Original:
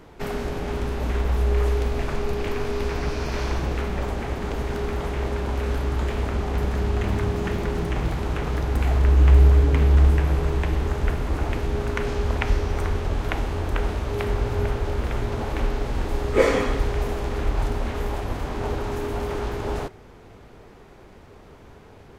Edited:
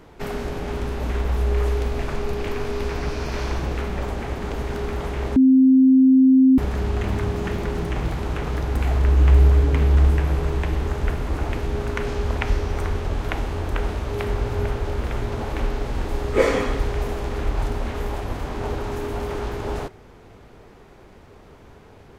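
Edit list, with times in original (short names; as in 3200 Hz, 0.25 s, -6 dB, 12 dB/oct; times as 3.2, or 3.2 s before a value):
5.36–6.58 bleep 262 Hz -10 dBFS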